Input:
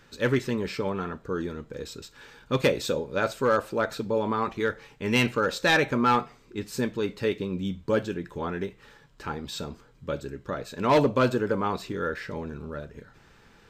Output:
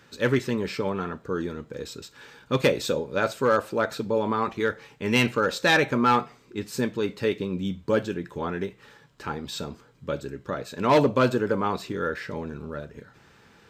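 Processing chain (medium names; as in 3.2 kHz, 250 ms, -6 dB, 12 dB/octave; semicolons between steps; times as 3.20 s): high-pass 76 Hz; trim +1.5 dB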